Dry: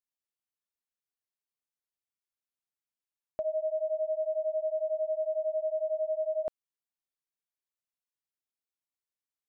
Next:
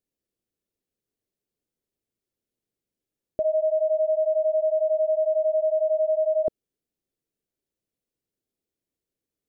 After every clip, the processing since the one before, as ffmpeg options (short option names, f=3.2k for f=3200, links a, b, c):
-af "lowshelf=f=640:t=q:w=1.5:g=13.5,alimiter=limit=-20dB:level=0:latency=1:release=22,volume=2.5dB"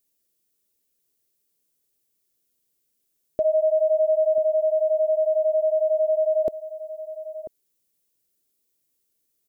-filter_complex "[0:a]equalizer=f=480:t=o:w=2.3:g=2,crystalizer=i=4.5:c=0,asplit=2[a][b];[b]adelay=991.3,volume=-14dB,highshelf=f=4k:g=-22.3[c];[a][c]amix=inputs=2:normalize=0"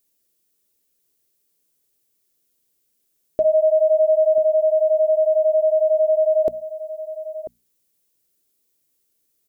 -af "bandreject=f=60:t=h:w=6,bandreject=f=120:t=h:w=6,bandreject=f=180:t=h:w=6,bandreject=f=240:t=h:w=6,volume=4dB"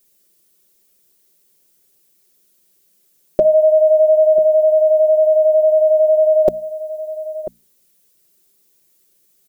-af "aecho=1:1:5.4:0.95,volume=7.5dB"